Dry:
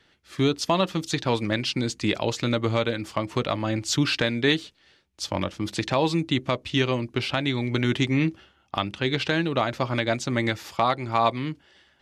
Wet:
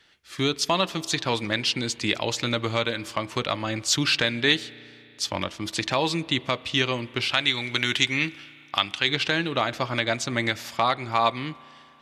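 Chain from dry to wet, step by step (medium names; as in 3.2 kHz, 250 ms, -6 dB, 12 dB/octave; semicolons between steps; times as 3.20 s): tilt shelf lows -4.5 dB, from 7.30 s lows -10 dB, from 9.08 s lows -4 dB; spring tank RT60 2.9 s, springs 34 ms, chirp 25 ms, DRR 19 dB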